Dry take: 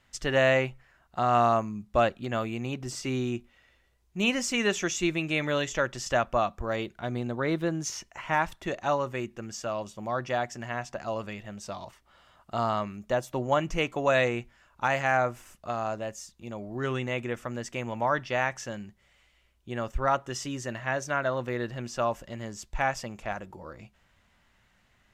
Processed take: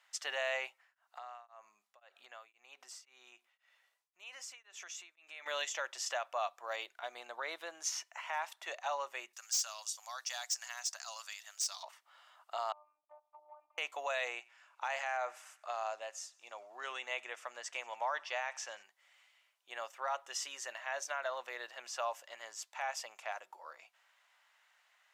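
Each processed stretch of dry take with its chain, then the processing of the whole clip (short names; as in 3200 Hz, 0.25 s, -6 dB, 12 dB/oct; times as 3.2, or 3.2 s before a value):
0.69–5.46 compressor 10:1, threshold -39 dBFS + beating tremolo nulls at 1.9 Hz
9.33–11.83 HPF 1400 Hz + resonant high shelf 3700 Hz +12 dB, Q 1.5 + hard clip -27 dBFS
12.72–13.78 vocal tract filter a + compressor 4:1, threshold -46 dBFS + robotiser 301 Hz
14.31–18.83 LPF 10000 Hz + thinning echo 92 ms, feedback 61%, high-pass 930 Hz, level -23.5 dB
whole clip: limiter -19 dBFS; HPF 720 Hz 24 dB/oct; dynamic EQ 1400 Hz, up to -5 dB, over -45 dBFS, Q 1.1; gain -2 dB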